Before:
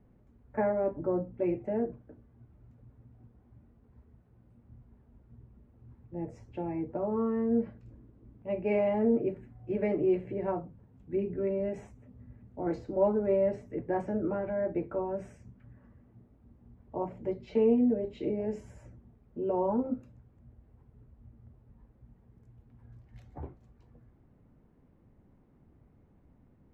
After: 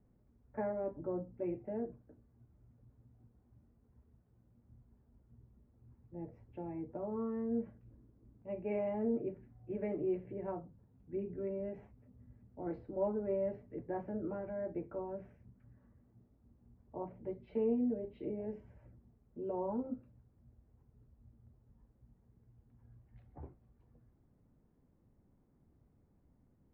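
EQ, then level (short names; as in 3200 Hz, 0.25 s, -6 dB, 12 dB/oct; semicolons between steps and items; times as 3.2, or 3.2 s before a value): air absorption 390 m; -7.5 dB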